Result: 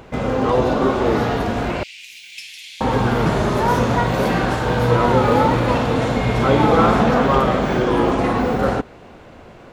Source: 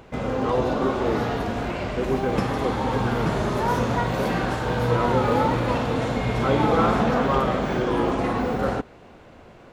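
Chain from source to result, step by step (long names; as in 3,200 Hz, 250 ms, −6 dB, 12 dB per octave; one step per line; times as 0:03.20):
0:01.83–0:02.81: elliptic high-pass filter 2,400 Hz, stop band 50 dB
level +5.5 dB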